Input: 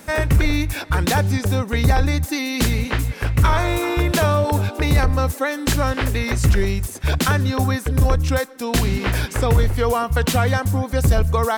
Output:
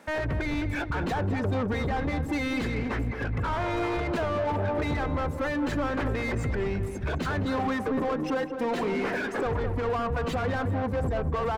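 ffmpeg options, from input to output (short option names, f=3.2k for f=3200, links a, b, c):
-filter_complex "[0:a]asettb=1/sr,asplit=3[a][b][c];[a]atrim=end=7.454[d];[b]atrim=start=7.45:end=9.46,asetpts=PTS-STARTPTS,afade=t=in:d=0.004:c=qsin,afade=t=out:st=2.006:d=0.004:c=qsin,highpass=f=200:w=0.5412,highpass=f=200:w=1.3066[e];[c]atrim=start=9.456[f];[d][e]acrossfade=d=0.004:c1=hsin:c2=qsin[g];[g][f]acrossfade=d=0.004:c1=qsin:c2=hsin,afftdn=nr=21:nf=-25,acompressor=threshold=-22dB:ratio=6,alimiter=limit=-21.5dB:level=0:latency=1:release=30,asplit=2[h][i];[i]highpass=f=720:p=1,volume=25dB,asoftclip=type=tanh:threshold=-21.5dB[j];[h][j]amix=inputs=2:normalize=0,lowpass=f=1.1k:p=1,volume=-6dB,asplit=2[k][l];[l]adelay=213,lowpass=f=1.9k:p=1,volume=-8dB,asplit=2[m][n];[n]adelay=213,lowpass=f=1.9k:p=1,volume=0.5,asplit=2[o][p];[p]adelay=213,lowpass=f=1.9k:p=1,volume=0.5,asplit=2[q][r];[r]adelay=213,lowpass=f=1.9k:p=1,volume=0.5,asplit=2[s][t];[t]adelay=213,lowpass=f=1.9k:p=1,volume=0.5,asplit=2[u][v];[v]adelay=213,lowpass=f=1.9k:p=1,volume=0.5[w];[m][o][q][s][u][w]amix=inputs=6:normalize=0[x];[k][x]amix=inputs=2:normalize=0"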